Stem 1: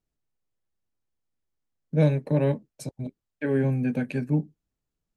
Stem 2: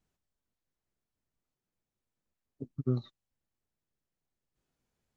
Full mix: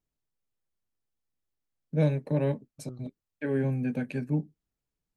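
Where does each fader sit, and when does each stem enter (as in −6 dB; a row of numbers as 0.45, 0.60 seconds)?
−4.0, −14.5 decibels; 0.00, 0.00 seconds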